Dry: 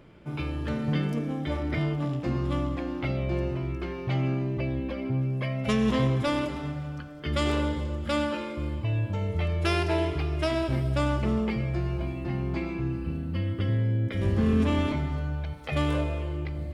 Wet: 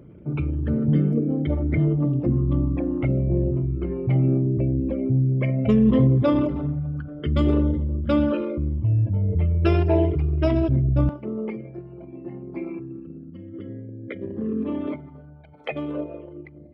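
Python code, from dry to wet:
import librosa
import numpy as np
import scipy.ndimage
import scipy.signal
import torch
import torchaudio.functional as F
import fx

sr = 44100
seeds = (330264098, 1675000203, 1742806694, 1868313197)

y = fx.envelope_sharpen(x, sr, power=2.0)
y = fx.highpass(y, sr, hz=fx.steps((0.0, 58.0), (11.09, 390.0)), slope=12)
y = F.gain(torch.from_numpy(y), 7.5).numpy()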